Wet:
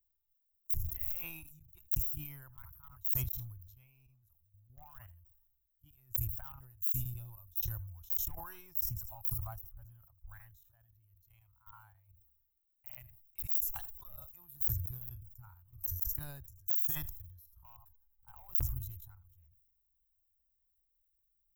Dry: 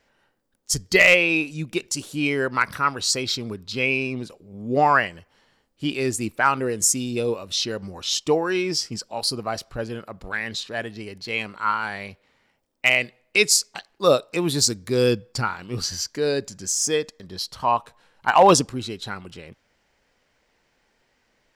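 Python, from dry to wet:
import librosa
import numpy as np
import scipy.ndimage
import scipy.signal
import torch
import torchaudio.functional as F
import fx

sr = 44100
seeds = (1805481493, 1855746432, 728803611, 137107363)

p1 = fx.curve_eq(x, sr, hz=(320.0, 900.0, 2300.0, 5200.0), db=(0, 13, -4, 14))
p2 = fx.level_steps(p1, sr, step_db=13)
p3 = p2 + fx.echo_single(p2, sr, ms=79, db=-20.0, dry=0)
p4 = np.clip(10.0 ** (8.5 / 20.0) * p3, -1.0, 1.0) / 10.0 ** (8.5 / 20.0)
p5 = scipy.signal.sosfilt(scipy.signal.cheby2(4, 50, [190.0, 9700.0], 'bandstop', fs=sr, output='sos'), p4)
p6 = fx.low_shelf(p5, sr, hz=360.0, db=-9.5)
p7 = fx.sustainer(p6, sr, db_per_s=48.0)
y = p7 * 10.0 ** (5.0 / 20.0)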